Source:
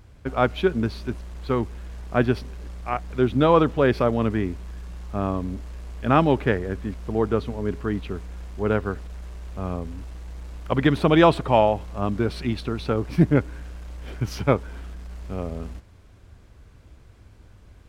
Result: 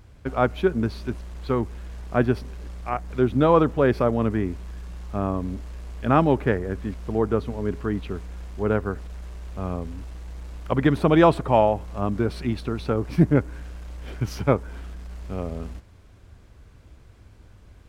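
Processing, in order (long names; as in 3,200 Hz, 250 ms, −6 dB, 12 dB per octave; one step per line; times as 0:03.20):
dynamic equaliser 3,400 Hz, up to −6 dB, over −42 dBFS, Q 0.9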